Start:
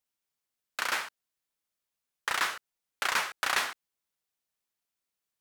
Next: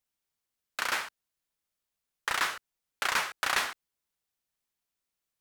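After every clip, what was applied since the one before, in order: bass shelf 110 Hz +7 dB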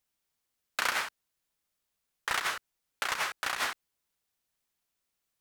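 compressor with a negative ratio -31 dBFS, ratio -0.5; trim +1 dB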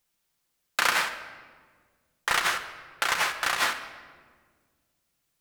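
simulated room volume 1800 m³, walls mixed, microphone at 0.82 m; trim +5.5 dB

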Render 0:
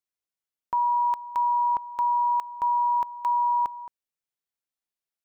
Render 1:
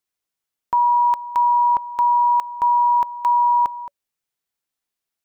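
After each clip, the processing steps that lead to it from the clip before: band-stop 570 Hz, Q 18; trim +7 dB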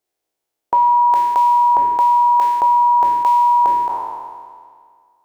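spectral sustain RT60 1.98 s; high-order bell 500 Hz +10.5 dB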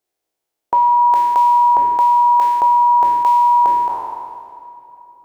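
reverberation RT60 4.4 s, pre-delay 28 ms, DRR 15.5 dB

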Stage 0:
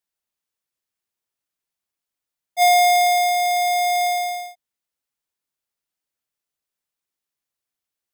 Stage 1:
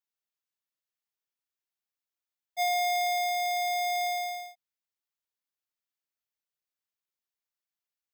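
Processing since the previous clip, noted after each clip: peaking EQ 9.3 kHz -8 dB 0.4 oct; compression, threshold -18 dBFS, peak gain reduction 4.5 dB; bass shelf 500 Hz -7 dB; trim -7 dB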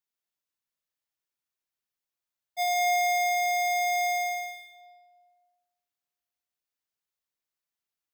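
reverberation RT60 1.6 s, pre-delay 90 ms, DRR 4.5 dB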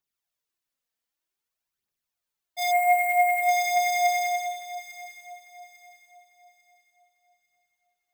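spectral selection erased 2.71–3.49 s, 3.2–7.1 kHz; phaser 0.53 Hz, delay 4.6 ms, feedback 50%; echo whose repeats swap between lows and highs 424 ms, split 980 Hz, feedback 55%, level -9.5 dB; trim +1.5 dB

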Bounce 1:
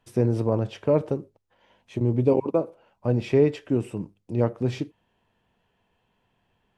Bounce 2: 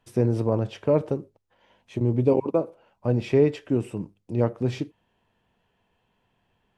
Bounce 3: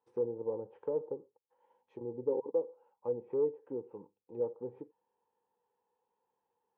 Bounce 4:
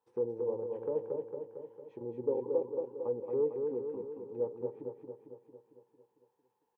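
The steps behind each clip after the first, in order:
no audible change
overload inside the chain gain 13 dB; low-pass that closes with the level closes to 640 Hz, closed at -21.5 dBFS; two resonant band-passes 650 Hz, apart 0.81 oct; trim -3 dB
feedback delay 226 ms, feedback 59%, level -4.5 dB

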